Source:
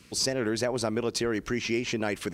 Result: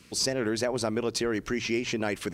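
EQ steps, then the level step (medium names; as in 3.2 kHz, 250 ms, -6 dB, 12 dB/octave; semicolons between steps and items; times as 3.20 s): hum notches 60/120 Hz; 0.0 dB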